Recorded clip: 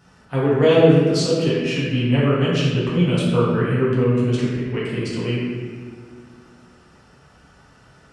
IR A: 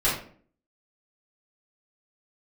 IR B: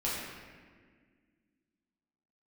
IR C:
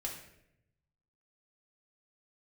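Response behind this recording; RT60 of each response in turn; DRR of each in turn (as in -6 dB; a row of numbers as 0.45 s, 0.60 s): B; 0.50 s, 1.7 s, 0.80 s; -10.0 dB, -8.0 dB, -1.5 dB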